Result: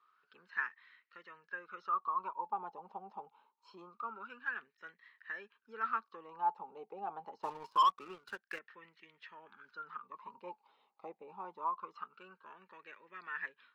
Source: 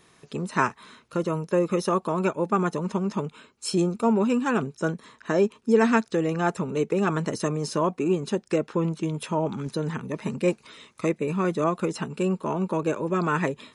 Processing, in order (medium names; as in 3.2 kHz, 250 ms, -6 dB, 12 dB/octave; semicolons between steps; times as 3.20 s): cabinet simulation 130–5600 Hz, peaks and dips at 140 Hz -6 dB, 300 Hz -4 dB, 640 Hz -7 dB, 1.8 kHz -5 dB, 3 kHz +6 dB, 4.5 kHz +8 dB; wah-wah 0.25 Hz 770–1900 Hz, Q 19; 7.42–8.59 s: waveshaping leveller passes 2; trim +4.5 dB